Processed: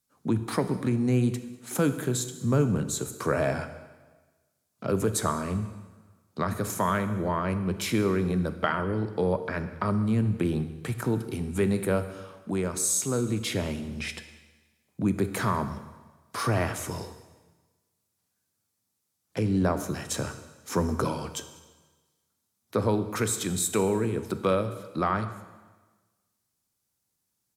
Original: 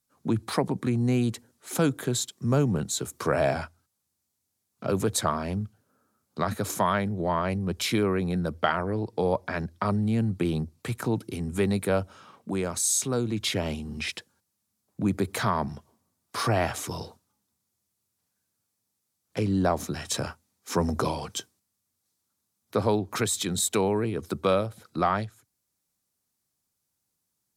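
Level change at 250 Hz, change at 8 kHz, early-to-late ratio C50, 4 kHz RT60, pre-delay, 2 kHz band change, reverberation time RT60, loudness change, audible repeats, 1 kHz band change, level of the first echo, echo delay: +0.5 dB, -1.0 dB, 11.0 dB, 1.3 s, 5 ms, -1.0 dB, 1.3 s, -0.5 dB, 1, -2.0 dB, -23.0 dB, 0.194 s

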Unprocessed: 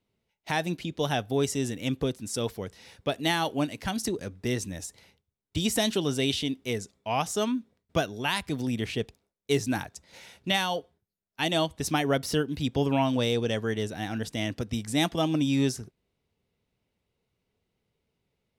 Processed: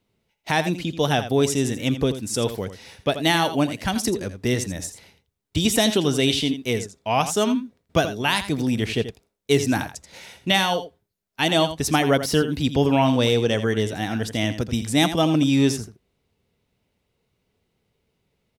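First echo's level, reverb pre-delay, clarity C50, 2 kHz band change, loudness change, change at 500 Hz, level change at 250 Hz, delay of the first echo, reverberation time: -11.5 dB, none, none, +7.0 dB, +6.5 dB, +7.0 dB, +7.0 dB, 83 ms, none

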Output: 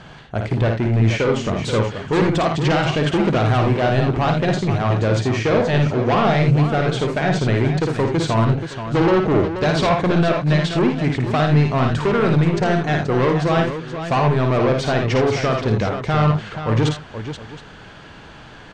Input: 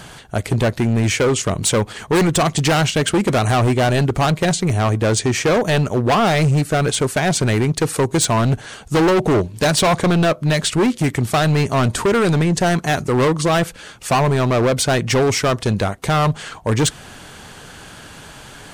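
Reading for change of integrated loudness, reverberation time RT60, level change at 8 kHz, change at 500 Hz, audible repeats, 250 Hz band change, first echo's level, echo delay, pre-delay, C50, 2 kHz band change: -1.0 dB, none, -15.5 dB, -1.0 dB, 3, -0.5 dB, -5.0 dB, 54 ms, none, none, -2.0 dB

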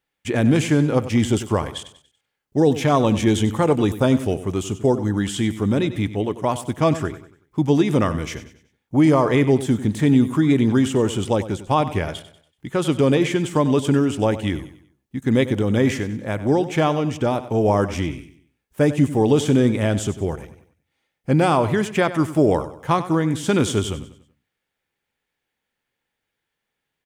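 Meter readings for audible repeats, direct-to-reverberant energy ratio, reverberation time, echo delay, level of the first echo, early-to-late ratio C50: 3, none, none, 95 ms, -14.0 dB, none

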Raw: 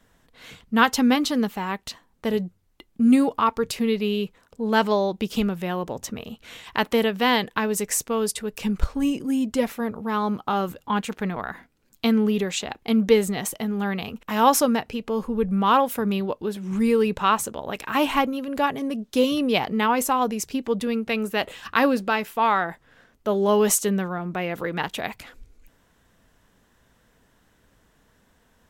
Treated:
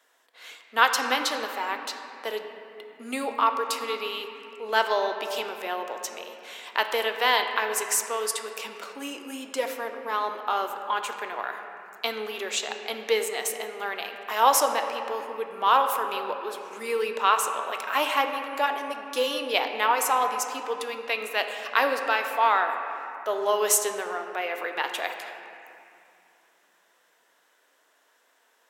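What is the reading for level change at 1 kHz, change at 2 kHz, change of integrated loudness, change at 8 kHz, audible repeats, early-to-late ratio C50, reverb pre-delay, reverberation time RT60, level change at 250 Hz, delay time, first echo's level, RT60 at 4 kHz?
0.0 dB, +1.0 dB, -3.0 dB, 0.0 dB, none, 6.0 dB, 3 ms, 2.6 s, -19.0 dB, none, none, 1.9 s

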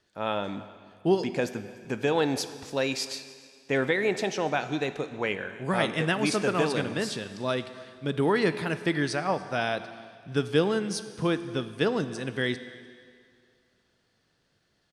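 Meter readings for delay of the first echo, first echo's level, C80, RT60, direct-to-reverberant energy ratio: 0.294 s, -22.0 dB, 13.0 dB, 2.1 s, 11.0 dB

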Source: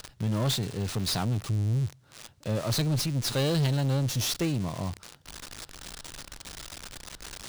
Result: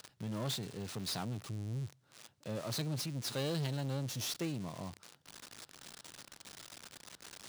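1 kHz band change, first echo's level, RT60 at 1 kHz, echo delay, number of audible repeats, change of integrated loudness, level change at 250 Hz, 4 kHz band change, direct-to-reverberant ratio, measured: -9.0 dB, none, none, none, none, -11.0 dB, -10.0 dB, -9.0 dB, none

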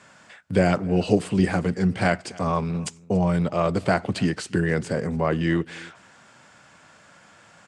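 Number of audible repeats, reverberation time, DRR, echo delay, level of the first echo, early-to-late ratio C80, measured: 1, none, none, 0.283 s, -23.5 dB, none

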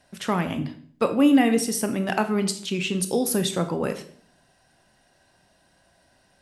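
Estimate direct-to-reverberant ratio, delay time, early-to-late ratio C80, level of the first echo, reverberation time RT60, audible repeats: 8.0 dB, none, 15.5 dB, none, 0.55 s, none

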